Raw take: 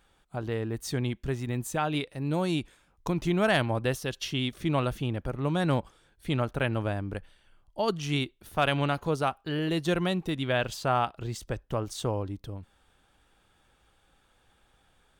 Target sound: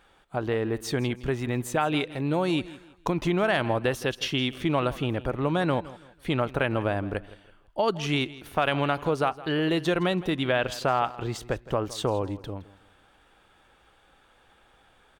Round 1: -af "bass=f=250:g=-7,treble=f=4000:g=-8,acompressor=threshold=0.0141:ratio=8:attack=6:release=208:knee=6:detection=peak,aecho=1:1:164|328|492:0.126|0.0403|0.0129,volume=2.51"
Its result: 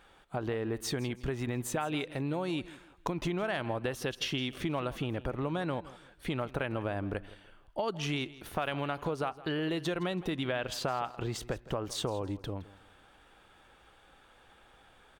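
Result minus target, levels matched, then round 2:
compression: peak gain reduction +9 dB
-af "bass=f=250:g=-7,treble=f=4000:g=-8,acompressor=threshold=0.0473:ratio=8:attack=6:release=208:knee=6:detection=peak,aecho=1:1:164|328|492:0.126|0.0403|0.0129,volume=2.51"

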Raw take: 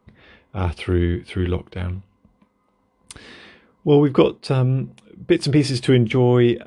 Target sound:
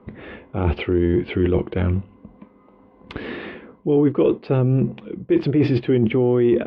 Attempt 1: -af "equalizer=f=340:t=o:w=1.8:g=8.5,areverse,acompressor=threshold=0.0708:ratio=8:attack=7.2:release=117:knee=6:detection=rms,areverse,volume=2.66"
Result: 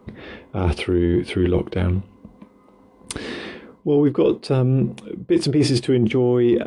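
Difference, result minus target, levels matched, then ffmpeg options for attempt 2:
4 kHz band +7.5 dB
-af "lowpass=f=3000:w=0.5412,lowpass=f=3000:w=1.3066,equalizer=f=340:t=o:w=1.8:g=8.5,areverse,acompressor=threshold=0.0708:ratio=8:attack=7.2:release=117:knee=6:detection=rms,areverse,volume=2.66"

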